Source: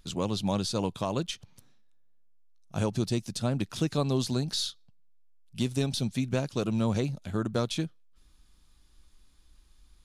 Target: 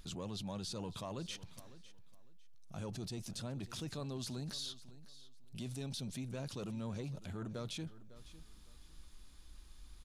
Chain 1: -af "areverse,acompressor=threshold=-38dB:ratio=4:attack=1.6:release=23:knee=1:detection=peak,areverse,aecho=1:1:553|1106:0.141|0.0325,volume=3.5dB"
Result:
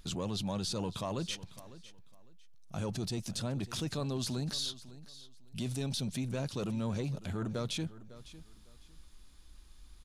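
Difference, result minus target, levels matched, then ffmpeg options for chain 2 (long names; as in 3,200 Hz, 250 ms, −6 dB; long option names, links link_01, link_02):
downward compressor: peak gain reduction −7 dB
-af "areverse,acompressor=threshold=-47.5dB:ratio=4:attack=1.6:release=23:knee=1:detection=peak,areverse,aecho=1:1:553|1106:0.141|0.0325,volume=3.5dB"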